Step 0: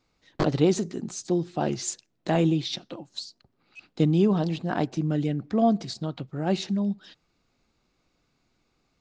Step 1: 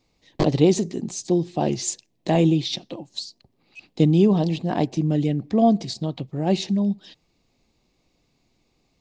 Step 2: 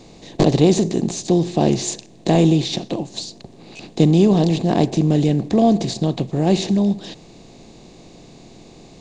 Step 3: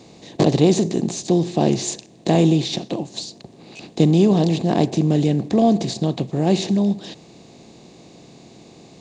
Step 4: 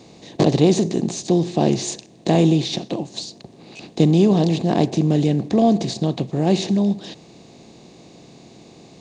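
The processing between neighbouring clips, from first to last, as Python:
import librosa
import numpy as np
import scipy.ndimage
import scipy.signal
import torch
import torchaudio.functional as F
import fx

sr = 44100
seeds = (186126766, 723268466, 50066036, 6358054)

y1 = fx.peak_eq(x, sr, hz=1400.0, db=-14.0, octaves=0.47)
y1 = y1 * 10.0 ** (4.5 / 20.0)
y2 = fx.bin_compress(y1, sr, power=0.6)
y2 = fx.low_shelf(y2, sr, hz=220.0, db=3.0)
y3 = scipy.signal.sosfilt(scipy.signal.butter(2, 87.0, 'highpass', fs=sr, output='sos'), y2)
y3 = y3 * 10.0 ** (-1.0 / 20.0)
y4 = fx.notch(y3, sr, hz=7300.0, q=27.0)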